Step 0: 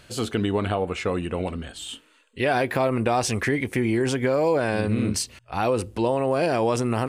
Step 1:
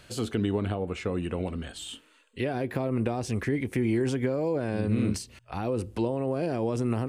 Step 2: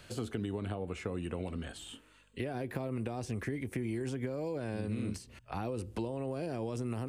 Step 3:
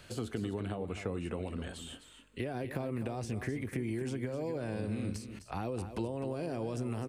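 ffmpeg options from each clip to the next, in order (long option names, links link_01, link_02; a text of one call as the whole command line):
ffmpeg -i in.wav -filter_complex "[0:a]acrossover=split=440[link_01][link_02];[link_02]acompressor=threshold=-34dB:ratio=6[link_03];[link_01][link_03]amix=inputs=2:normalize=0,volume=-2dB" out.wav
ffmpeg -i in.wav -filter_complex "[0:a]acrossover=split=88|2400|6200[link_01][link_02][link_03][link_04];[link_01]acompressor=threshold=-46dB:ratio=4[link_05];[link_02]acompressor=threshold=-33dB:ratio=4[link_06];[link_03]acompressor=threshold=-55dB:ratio=4[link_07];[link_04]acompressor=threshold=-51dB:ratio=4[link_08];[link_05][link_06][link_07][link_08]amix=inputs=4:normalize=0,aeval=exprs='val(0)+0.000398*(sin(2*PI*50*n/s)+sin(2*PI*2*50*n/s)/2+sin(2*PI*3*50*n/s)/3+sin(2*PI*4*50*n/s)/4+sin(2*PI*5*50*n/s)/5)':channel_layout=same,volume=-1.5dB" out.wav
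ffmpeg -i in.wav -af "aecho=1:1:256:0.299" out.wav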